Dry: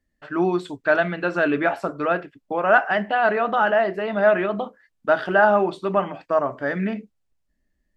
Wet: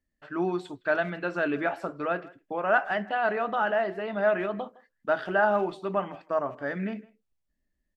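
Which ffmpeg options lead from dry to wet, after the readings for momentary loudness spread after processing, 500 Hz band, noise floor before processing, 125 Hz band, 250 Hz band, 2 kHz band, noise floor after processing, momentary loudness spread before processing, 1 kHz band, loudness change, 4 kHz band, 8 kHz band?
9 LU, −7.0 dB, −73 dBFS, −7.0 dB, −7.0 dB, −7.0 dB, −80 dBFS, 9 LU, −7.0 dB, −7.0 dB, −7.0 dB, can't be measured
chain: -filter_complex "[0:a]asplit=2[link_01][link_02];[link_02]adelay=160,highpass=300,lowpass=3400,asoftclip=type=hard:threshold=-13dB,volume=-21dB[link_03];[link_01][link_03]amix=inputs=2:normalize=0,volume=-7dB"

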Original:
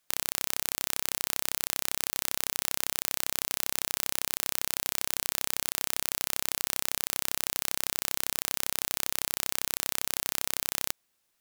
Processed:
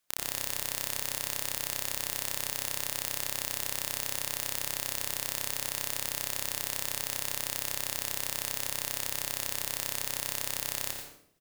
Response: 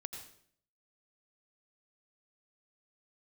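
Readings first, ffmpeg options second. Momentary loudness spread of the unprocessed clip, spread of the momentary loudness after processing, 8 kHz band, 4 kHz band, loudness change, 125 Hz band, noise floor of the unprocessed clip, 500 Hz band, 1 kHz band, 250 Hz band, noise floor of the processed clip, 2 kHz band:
0 LU, 0 LU, −2.0 dB, −2.0 dB, −2.0 dB, +2.5 dB, −75 dBFS, −0.5 dB, −2.0 dB, −3.0 dB, −41 dBFS, −1.5 dB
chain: -filter_complex "[0:a]asplit=2[link_01][link_02];[link_02]adelay=85,lowpass=frequency=1000:poles=1,volume=-3dB,asplit=2[link_03][link_04];[link_04]adelay=85,lowpass=frequency=1000:poles=1,volume=0.43,asplit=2[link_05][link_06];[link_06]adelay=85,lowpass=frequency=1000:poles=1,volume=0.43,asplit=2[link_07][link_08];[link_08]adelay=85,lowpass=frequency=1000:poles=1,volume=0.43,asplit=2[link_09][link_10];[link_10]adelay=85,lowpass=frequency=1000:poles=1,volume=0.43,asplit=2[link_11][link_12];[link_12]adelay=85,lowpass=frequency=1000:poles=1,volume=0.43[link_13];[link_01][link_03][link_05][link_07][link_09][link_11][link_13]amix=inputs=7:normalize=0[link_14];[1:a]atrim=start_sample=2205[link_15];[link_14][link_15]afir=irnorm=-1:irlink=0"

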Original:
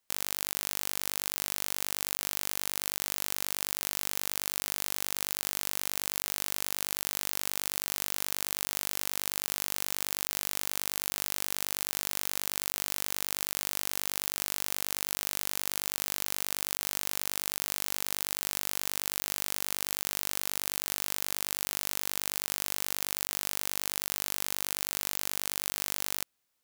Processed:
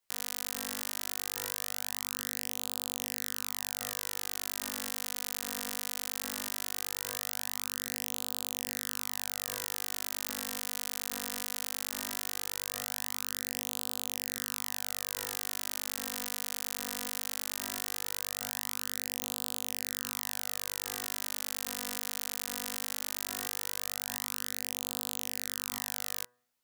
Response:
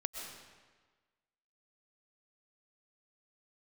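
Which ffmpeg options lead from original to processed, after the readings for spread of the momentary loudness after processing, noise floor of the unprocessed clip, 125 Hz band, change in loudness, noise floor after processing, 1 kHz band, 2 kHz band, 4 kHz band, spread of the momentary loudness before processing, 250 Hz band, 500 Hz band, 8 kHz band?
0 LU, −34 dBFS, −2.5 dB, −3.5 dB, −38 dBFS, −3.5 dB, −3.0 dB, −3.0 dB, 0 LU, −3.0 dB, −3.0 dB, −3.0 dB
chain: -af "bandreject=frequency=122.5:width_type=h:width=4,bandreject=frequency=245:width_type=h:width=4,bandreject=frequency=367.5:width_type=h:width=4,bandreject=frequency=490:width_type=h:width=4,bandreject=frequency=612.5:width_type=h:width=4,bandreject=frequency=735:width_type=h:width=4,bandreject=frequency=857.5:width_type=h:width=4,bandreject=frequency=980:width_type=h:width=4,bandreject=frequency=1102.5:width_type=h:width=4,bandreject=frequency=1225:width_type=h:width=4,bandreject=frequency=1347.5:width_type=h:width=4,bandreject=frequency=1470:width_type=h:width=4,bandreject=frequency=1592.5:width_type=h:width=4,bandreject=frequency=1715:width_type=h:width=4,bandreject=frequency=1837.5:width_type=h:width=4,bandreject=frequency=1960:width_type=h:width=4,flanger=delay=16:depth=4:speed=0.18"

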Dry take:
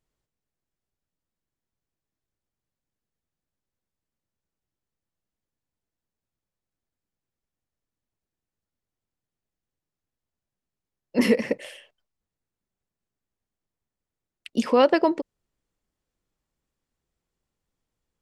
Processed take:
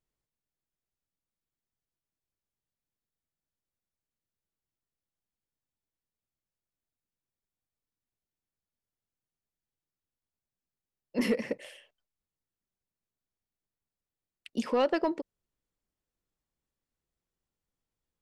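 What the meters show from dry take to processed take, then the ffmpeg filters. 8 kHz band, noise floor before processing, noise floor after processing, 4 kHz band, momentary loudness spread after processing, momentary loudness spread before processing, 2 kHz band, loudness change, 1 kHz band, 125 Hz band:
−7.5 dB, below −85 dBFS, below −85 dBFS, −8.0 dB, 14 LU, 15 LU, −8.0 dB, −8.5 dB, −8.5 dB, −7.5 dB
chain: -af "asoftclip=type=tanh:threshold=-10dB,volume=-7dB"

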